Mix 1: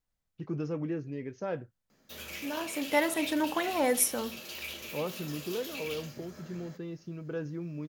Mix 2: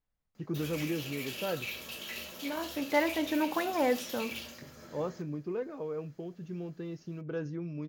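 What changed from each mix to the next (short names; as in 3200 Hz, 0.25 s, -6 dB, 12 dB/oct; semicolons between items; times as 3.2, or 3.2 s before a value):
second voice: add air absorption 180 m; background: entry -1.55 s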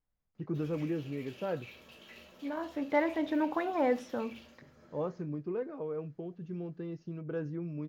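background -7.5 dB; master: add LPF 1800 Hz 6 dB/oct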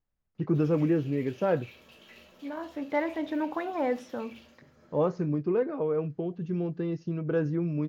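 first voice +9.0 dB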